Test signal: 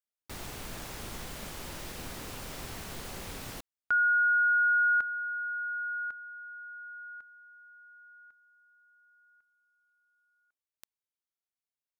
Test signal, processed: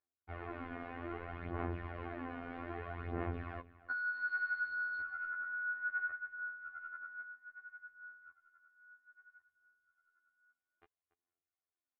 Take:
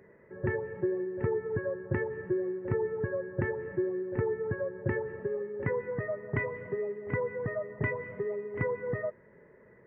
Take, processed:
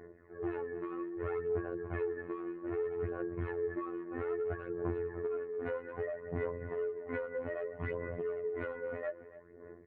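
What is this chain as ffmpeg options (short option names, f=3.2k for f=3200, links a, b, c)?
-filter_complex "[0:a]aemphasis=mode=reproduction:type=75kf,bandreject=f=950:w=19,asoftclip=type=hard:threshold=-31.5dB,highpass=65,aphaser=in_gain=1:out_gain=1:delay=4.2:decay=0.66:speed=0.62:type=sinusoidal,aecho=1:1:2.8:0.61,asplit=2[a][b];[b]adelay=285.7,volume=-17dB,highshelf=f=4k:g=-6.43[c];[a][c]amix=inputs=2:normalize=0,acompressor=threshold=-34dB:ratio=4:attack=25:release=53:knee=1:detection=peak,afftfilt=real='hypot(re,im)*cos(PI*b)':imag='0':win_size=2048:overlap=0.75,lowpass=f=2.1k:w=0.5412,lowpass=f=2.1k:w=1.3066,volume=1dB"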